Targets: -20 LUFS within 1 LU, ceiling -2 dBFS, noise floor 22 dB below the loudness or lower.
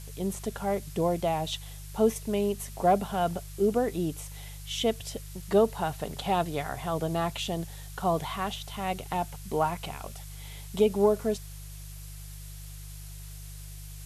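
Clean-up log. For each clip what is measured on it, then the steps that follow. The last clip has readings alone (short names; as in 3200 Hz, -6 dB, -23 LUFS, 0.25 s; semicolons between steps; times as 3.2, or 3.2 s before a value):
hum 50 Hz; harmonics up to 150 Hz; hum level -40 dBFS; noise floor -42 dBFS; noise floor target -52 dBFS; loudness -29.5 LUFS; peak -12.0 dBFS; loudness target -20.0 LUFS
-> de-hum 50 Hz, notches 3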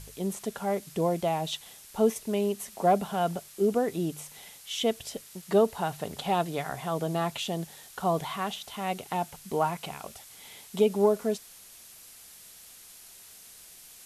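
hum none; noise floor -51 dBFS; noise floor target -52 dBFS
-> denoiser 6 dB, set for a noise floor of -51 dBFS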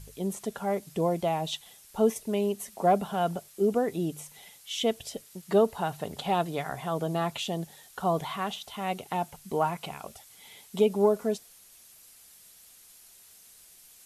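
noise floor -55 dBFS; loudness -29.5 LUFS; peak -12.0 dBFS; loudness target -20.0 LUFS
-> gain +9.5 dB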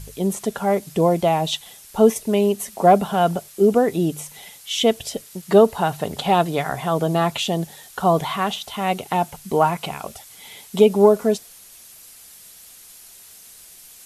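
loudness -20.0 LUFS; peak -2.5 dBFS; noise floor -45 dBFS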